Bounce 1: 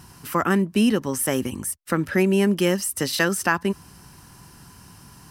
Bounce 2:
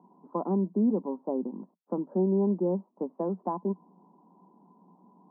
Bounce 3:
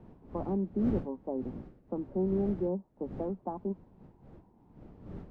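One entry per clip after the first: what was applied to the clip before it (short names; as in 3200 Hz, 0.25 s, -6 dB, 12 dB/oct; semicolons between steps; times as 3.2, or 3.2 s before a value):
Chebyshev band-pass 180–1000 Hz, order 5; gain -5.5 dB
wind noise 250 Hz -40 dBFS; notch 1000 Hz, Q 9.7; gain -4.5 dB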